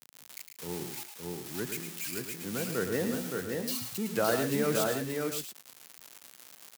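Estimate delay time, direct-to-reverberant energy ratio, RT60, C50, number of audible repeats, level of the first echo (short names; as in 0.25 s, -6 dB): 0.108 s, none, none, none, 4, -7.5 dB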